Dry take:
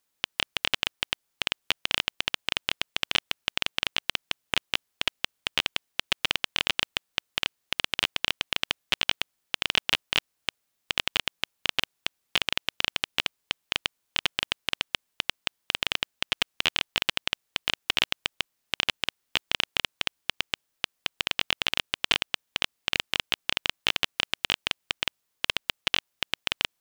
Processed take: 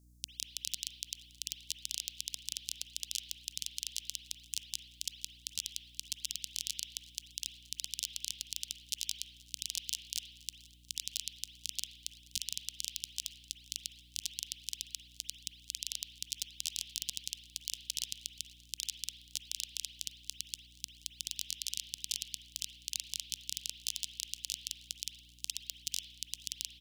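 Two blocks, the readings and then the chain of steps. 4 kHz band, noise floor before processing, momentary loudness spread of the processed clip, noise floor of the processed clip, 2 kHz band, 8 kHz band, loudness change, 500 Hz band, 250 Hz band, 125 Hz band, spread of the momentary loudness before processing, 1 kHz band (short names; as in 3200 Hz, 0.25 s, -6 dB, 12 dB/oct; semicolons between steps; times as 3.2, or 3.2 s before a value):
-12.5 dB, -78 dBFS, 6 LU, -60 dBFS, -25.0 dB, +3.5 dB, -11.0 dB, under -40 dB, -22.5 dB, -13.0 dB, 6 LU, under -40 dB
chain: inverse Chebyshev high-pass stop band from 1000 Hz, stop band 80 dB; high shelf 12000 Hz -5 dB; hum 60 Hz, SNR 21 dB; on a send: frequency-shifting echo 0.478 s, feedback 63%, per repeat +32 Hz, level -24 dB; on the sum: spring tank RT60 1 s, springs 36/49 ms, chirp 75 ms, DRR 4 dB; gain +5.5 dB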